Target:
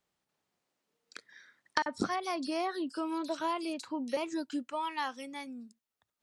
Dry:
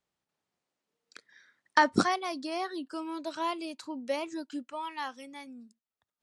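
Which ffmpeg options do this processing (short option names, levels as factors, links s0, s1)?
-filter_complex "[0:a]bandreject=f=60:t=h:w=6,bandreject=f=120:t=h:w=6,acompressor=threshold=0.0251:ratio=4,asettb=1/sr,asplit=3[s0][s1][s2];[s0]atrim=end=1.824[s3];[s1]atrim=start=1.82:end=4.17,asetpts=PTS-STARTPTS,afade=t=in:d=0.004:c=qsin,afade=t=out:st=2.346:d=0.004:c=qsin,acrossover=split=3400[s4][s5];[s4]adelay=40[s6];[s6][s5]amix=inputs=2:normalize=0,atrim=end_sample=103635[s7];[s2]atrim=start=4.166[s8];[s3][s7]acrossfade=d=0.004:c1=hsin:c2=qsin[s9];[s9][s8]acrossfade=d=0.004:c1=qsin:c2=hsin,volume=1.41"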